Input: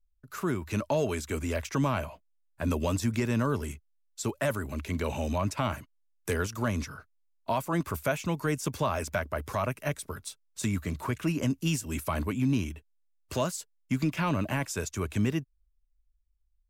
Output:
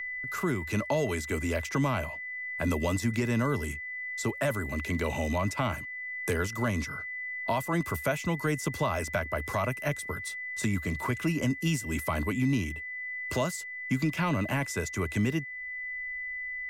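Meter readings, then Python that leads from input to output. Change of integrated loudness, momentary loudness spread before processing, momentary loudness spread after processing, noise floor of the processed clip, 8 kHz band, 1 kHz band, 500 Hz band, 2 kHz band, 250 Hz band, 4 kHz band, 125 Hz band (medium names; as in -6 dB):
+0.5 dB, 11 LU, 6 LU, -40 dBFS, -0.5 dB, 0.0 dB, 0.0 dB, +6.5 dB, 0.0 dB, 0.0 dB, 0.0 dB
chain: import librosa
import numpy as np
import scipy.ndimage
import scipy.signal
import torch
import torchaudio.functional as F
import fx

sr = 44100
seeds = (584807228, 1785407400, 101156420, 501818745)

y = x + 10.0 ** (-39.0 / 20.0) * np.sin(2.0 * np.pi * 2000.0 * np.arange(len(x)) / sr)
y = fx.band_squash(y, sr, depth_pct=40)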